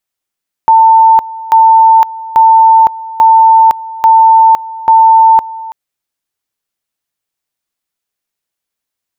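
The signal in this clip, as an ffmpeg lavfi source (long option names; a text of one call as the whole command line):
ffmpeg -f lavfi -i "aevalsrc='pow(10,(-1.5-19*gte(mod(t,0.84),0.51))/20)*sin(2*PI*895*t)':duration=5.04:sample_rate=44100" out.wav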